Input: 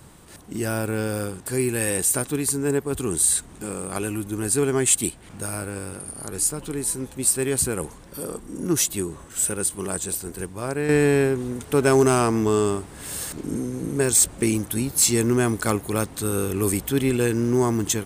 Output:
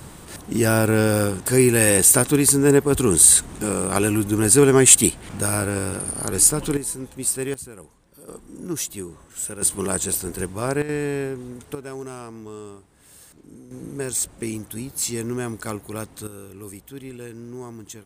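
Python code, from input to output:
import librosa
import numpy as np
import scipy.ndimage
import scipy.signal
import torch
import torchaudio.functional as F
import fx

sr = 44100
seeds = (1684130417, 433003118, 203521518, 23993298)

y = fx.gain(x, sr, db=fx.steps((0.0, 7.5), (6.77, -2.5), (7.54, -14.5), (8.28, -6.0), (9.62, 4.0), (10.82, -7.0), (11.75, -17.0), (13.71, -7.0), (16.27, -15.5)))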